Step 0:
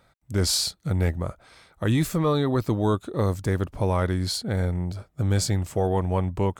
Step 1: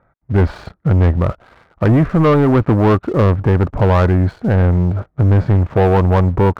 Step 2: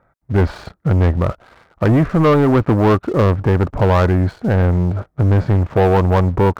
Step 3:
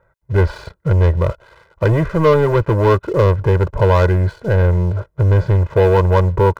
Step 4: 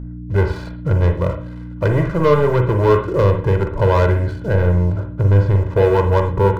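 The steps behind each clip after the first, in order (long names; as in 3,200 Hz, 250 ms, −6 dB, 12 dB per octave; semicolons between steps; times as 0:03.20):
low-pass filter 1,700 Hz 24 dB per octave; leveller curve on the samples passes 2; level +7.5 dB
bass and treble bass −2 dB, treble +4 dB
comb filter 2 ms, depth 90%; level −2.5 dB
mains hum 60 Hz, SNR 12 dB; on a send at −5 dB: convolution reverb, pre-delay 40 ms; on the sum: level −2.5 dB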